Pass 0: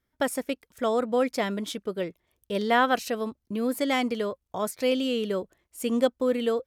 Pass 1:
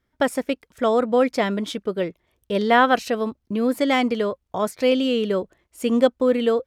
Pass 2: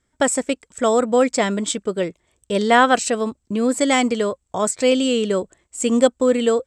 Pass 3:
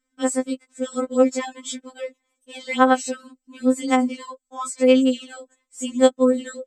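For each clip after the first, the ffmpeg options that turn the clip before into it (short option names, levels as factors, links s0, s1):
-af "highshelf=f=6900:g=-11,volume=2"
-af "lowpass=f=7800:t=q:w=13,volume=1.26"
-af "afftfilt=real='re*3.46*eq(mod(b,12),0)':imag='im*3.46*eq(mod(b,12),0)':win_size=2048:overlap=0.75,volume=0.562"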